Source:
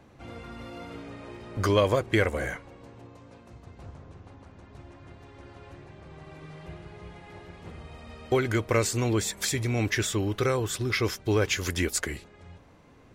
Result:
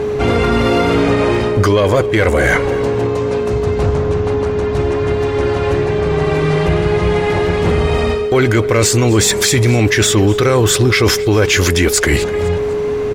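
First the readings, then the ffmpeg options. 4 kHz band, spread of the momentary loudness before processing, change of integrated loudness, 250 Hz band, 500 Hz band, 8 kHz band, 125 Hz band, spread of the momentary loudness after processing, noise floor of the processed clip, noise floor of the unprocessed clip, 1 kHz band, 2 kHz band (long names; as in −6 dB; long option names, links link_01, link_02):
+16.0 dB, 21 LU, +13.0 dB, +16.0 dB, +18.0 dB, +15.5 dB, +16.5 dB, 5 LU, −18 dBFS, −54 dBFS, +16.0 dB, +15.5 dB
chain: -filter_complex "[0:a]highshelf=frequency=9600:gain=-4.5,areverse,acompressor=threshold=-34dB:ratio=16,areverse,aeval=exprs='val(0)+0.00562*sin(2*PI*420*n/s)':channel_layout=same,asoftclip=type=tanh:threshold=-28.5dB,asplit=2[link_01][link_02];[link_02]aecho=0:1:250|500|750:0.0841|0.032|0.0121[link_03];[link_01][link_03]amix=inputs=2:normalize=0,alimiter=level_in=33dB:limit=-1dB:release=50:level=0:latency=1,volume=-4dB"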